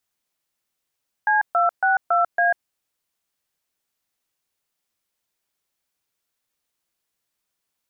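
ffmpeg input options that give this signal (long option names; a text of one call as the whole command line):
ffmpeg -f lavfi -i "aevalsrc='0.126*clip(min(mod(t,0.278),0.144-mod(t,0.278))/0.002,0,1)*(eq(floor(t/0.278),0)*(sin(2*PI*852*mod(t,0.278))+sin(2*PI*1633*mod(t,0.278)))+eq(floor(t/0.278),1)*(sin(2*PI*697*mod(t,0.278))+sin(2*PI*1336*mod(t,0.278)))+eq(floor(t/0.278),2)*(sin(2*PI*770*mod(t,0.278))+sin(2*PI*1477*mod(t,0.278)))+eq(floor(t/0.278),3)*(sin(2*PI*697*mod(t,0.278))+sin(2*PI*1336*mod(t,0.278)))+eq(floor(t/0.278),4)*(sin(2*PI*697*mod(t,0.278))+sin(2*PI*1633*mod(t,0.278))))':duration=1.39:sample_rate=44100" out.wav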